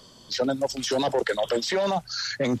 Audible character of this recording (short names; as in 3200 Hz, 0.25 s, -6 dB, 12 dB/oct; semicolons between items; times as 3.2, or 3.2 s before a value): noise floor -51 dBFS; spectral tilt -4.0 dB/oct